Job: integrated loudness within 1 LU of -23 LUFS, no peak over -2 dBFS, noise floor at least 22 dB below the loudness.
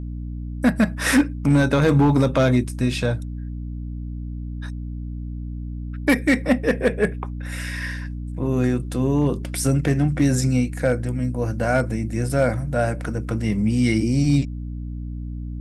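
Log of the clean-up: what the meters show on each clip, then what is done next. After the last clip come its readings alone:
clipped 1.0%; flat tops at -10.0 dBFS; hum 60 Hz; harmonics up to 300 Hz; hum level -27 dBFS; loudness -21.5 LUFS; peak -10.0 dBFS; loudness target -23.0 LUFS
-> clip repair -10 dBFS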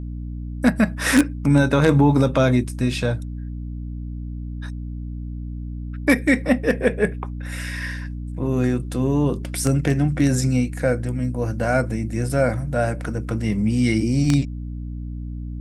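clipped 0.0%; hum 60 Hz; harmonics up to 300 Hz; hum level -27 dBFS
-> notches 60/120/180/240/300 Hz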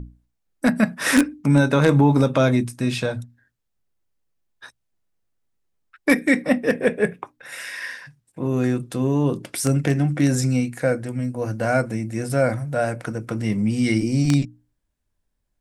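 hum none; loudness -21.5 LUFS; peak -1.5 dBFS; loudness target -23.0 LUFS
-> gain -1.5 dB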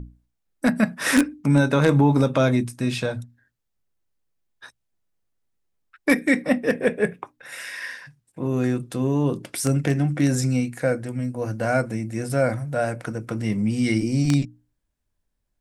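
loudness -23.0 LUFS; peak -3.0 dBFS; noise floor -76 dBFS

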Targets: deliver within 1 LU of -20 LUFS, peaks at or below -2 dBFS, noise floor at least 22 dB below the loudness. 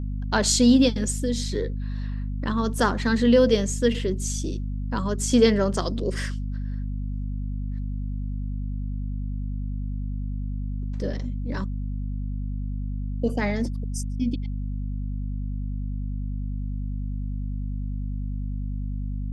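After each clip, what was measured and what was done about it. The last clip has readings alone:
hum 50 Hz; harmonics up to 250 Hz; hum level -26 dBFS; loudness -26.5 LUFS; peak -6.5 dBFS; loudness target -20.0 LUFS
-> de-hum 50 Hz, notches 5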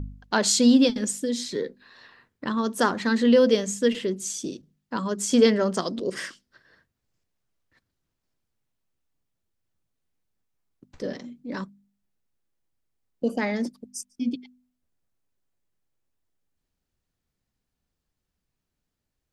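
hum none; loudness -24.0 LUFS; peak -6.5 dBFS; loudness target -20.0 LUFS
-> gain +4 dB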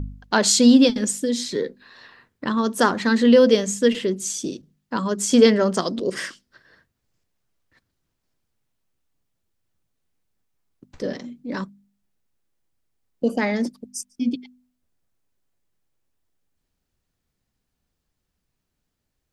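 loudness -20.0 LUFS; peak -2.5 dBFS; noise floor -78 dBFS

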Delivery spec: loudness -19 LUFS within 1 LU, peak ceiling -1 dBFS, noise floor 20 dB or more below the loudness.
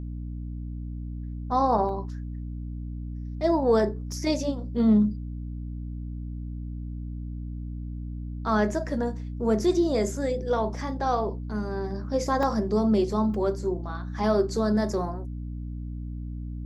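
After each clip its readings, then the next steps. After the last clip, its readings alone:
dropouts 4; longest dropout 1.4 ms; hum 60 Hz; harmonics up to 300 Hz; hum level -32 dBFS; loudness -28.0 LUFS; peak -10.5 dBFS; loudness target -19.0 LUFS
-> interpolate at 1.89/4.12/12.43/13.34, 1.4 ms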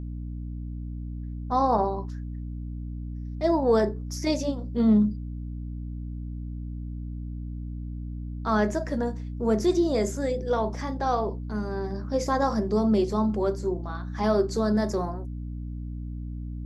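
dropouts 0; hum 60 Hz; harmonics up to 300 Hz; hum level -32 dBFS
-> notches 60/120/180/240/300 Hz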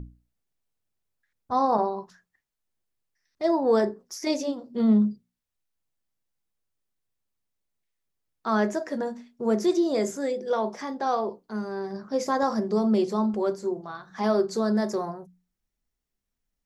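hum none; loudness -26.5 LUFS; peak -11.5 dBFS; loudness target -19.0 LUFS
-> gain +7.5 dB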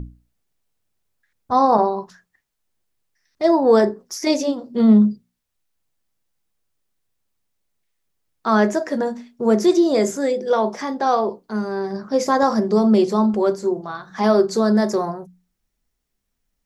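loudness -19.0 LUFS; peak -4.0 dBFS; noise floor -76 dBFS

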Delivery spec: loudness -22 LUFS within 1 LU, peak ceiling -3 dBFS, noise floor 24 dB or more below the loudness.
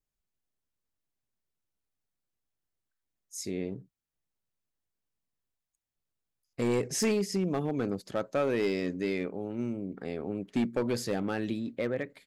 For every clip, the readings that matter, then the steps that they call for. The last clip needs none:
clipped 0.8%; flat tops at -22.0 dBFS; loudness -32.0 LUFS; peak -22.0 dBFS; loudness target -22.0 LUFS
-> clip repair -22 dBFS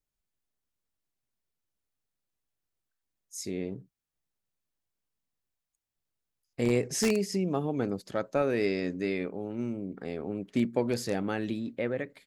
clipped 0.0%; loudness -31.0 LUFS; peak -13.0 dBFS; loudness target -22.0 LUFS
-> gain +9 dB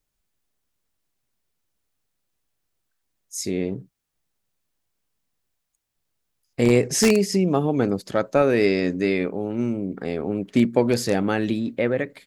loudness -22.0 LUFS; peak -4.0 dBFS; noise floor -79 dBFS

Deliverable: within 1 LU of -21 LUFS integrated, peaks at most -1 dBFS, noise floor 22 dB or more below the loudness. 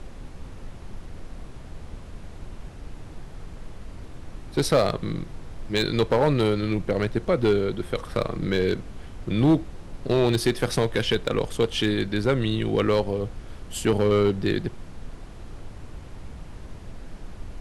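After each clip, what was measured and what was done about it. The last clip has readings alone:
clipped 0.6%; flat tops at -13.0 dBFS; noise floor -41 dBFS; noise floor target -47 dBFS; loudness -24.5 LUFS; peak -13.0 dBFS; loudness target -21.0 LUFS
-> clip repair -13 dBFS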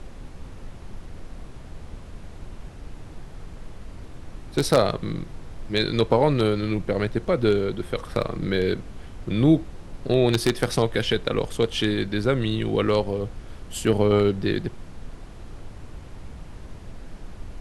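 clipped 0.0%; noise floor -41 dBFS; noise floor target -46 dBFS
-> noise print and reduce 6 dB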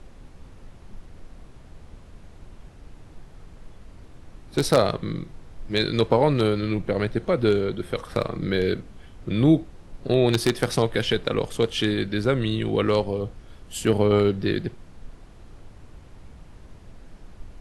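noise floor -47 dBFS; loudness -23.5 LUFS; peak -4.0 dBFS; loudness target -21.0 LUFS
-> gain +2.5 dB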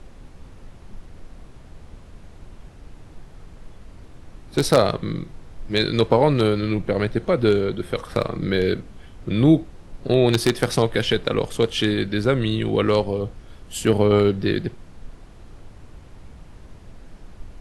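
loudness -21.0 LUFS; peak -1.5 dBFS; noise floor -45 dBFS

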